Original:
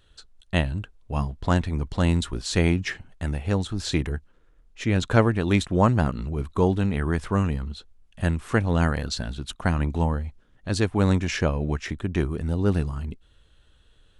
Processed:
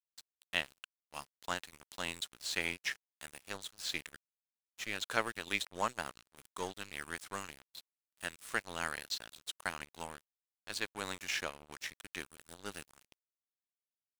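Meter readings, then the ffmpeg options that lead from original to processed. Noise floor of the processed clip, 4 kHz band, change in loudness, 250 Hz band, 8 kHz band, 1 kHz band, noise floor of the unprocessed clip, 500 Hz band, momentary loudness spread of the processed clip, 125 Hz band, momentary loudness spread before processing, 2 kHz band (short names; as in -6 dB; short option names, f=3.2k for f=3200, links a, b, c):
under -85 dBFS, -5.5 dB, -14.5 dB, -26.0 dB, -5.5 dB, -11.5 dB, -59 dBFS, -18.5 dB, 15 LU, -33.0 dB, 11 LU, -6.5 dB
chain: -filter_complex "[0:a]acrossover=split=3500[a][b];[b]acompressor=threshold=-46dB:ratio=4:attack=1:release=60[c];[a][c]amix=inputs=2:normalize=0,aderivative,aeval=exprs='sgn(val(0))*max(abs(val(0))-0.00299,0)':c=same,volume=7.5dB"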